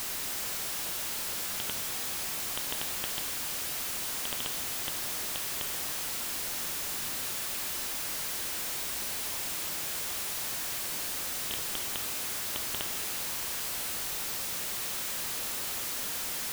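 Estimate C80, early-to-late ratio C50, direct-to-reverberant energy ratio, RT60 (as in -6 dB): 8.5 dB, 7.5 dB, 6.5 dB, 2.6 s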